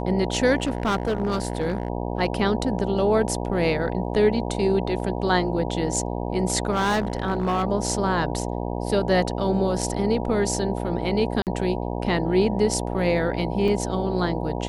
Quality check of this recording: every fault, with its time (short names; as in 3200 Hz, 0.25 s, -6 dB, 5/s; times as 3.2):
buzz 60 Hz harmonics 16 -28 dBFS
0.58–1.9 clipped -19 dBFS
6.71–7.64 clipped -18.5 dBFS
11.42–11.47 gap 48 ms
13.68 gap 3.4 ms